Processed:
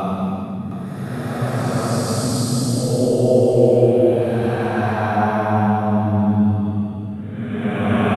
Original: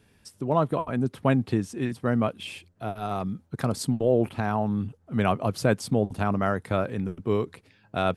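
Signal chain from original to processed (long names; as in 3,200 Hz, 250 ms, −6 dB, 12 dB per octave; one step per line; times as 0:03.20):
extreme stretch with random phases 4.1×, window 0.50 s, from 0:03.22
single-tap delay 714 ms −13 dB
level +8 dB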